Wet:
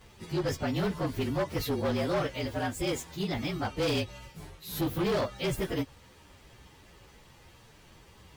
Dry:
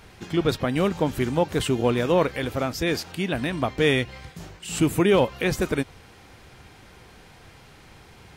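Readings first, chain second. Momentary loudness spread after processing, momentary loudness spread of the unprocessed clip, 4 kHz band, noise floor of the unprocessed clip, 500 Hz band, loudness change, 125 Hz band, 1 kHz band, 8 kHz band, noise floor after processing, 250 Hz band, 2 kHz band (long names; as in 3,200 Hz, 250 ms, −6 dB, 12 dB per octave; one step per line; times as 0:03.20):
7 LU, 9 LU, −6.0 dB, −50 dBFS, −8.5 dB, −7.5 dB, −6.0 dB, −7.0 dB, −7.0 dB, −56 dBFS, −7.5 dB, −9.0 dB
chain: partials spread apart or drawn together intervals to 113%
gain into a clipping stage and back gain 22.5 dB
level −2.5 dB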